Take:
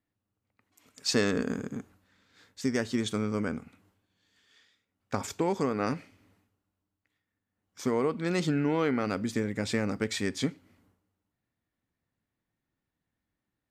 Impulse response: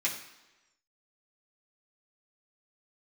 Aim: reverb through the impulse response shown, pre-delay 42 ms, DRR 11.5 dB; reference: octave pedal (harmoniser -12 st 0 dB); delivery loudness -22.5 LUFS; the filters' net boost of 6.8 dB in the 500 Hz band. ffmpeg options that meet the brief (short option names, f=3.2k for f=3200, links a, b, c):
-filter_complex "[0:a]equalizer=f=500:t=o:g=8,asplit=2[a][b];[1:a]atrim=start_sample=2205,adelay=42[c];[b][c]afir=irnorm=-1:irlink=0,volume=-18dB[d];[a][d]amix=inputs=2:normalize=0,asplit=2[e][f];[f]asetrate=22050,aresample=44100,atempo=2,volume=0dB[g];[e][g]amix=inputs=2:normalize=0,volume=1.5dB"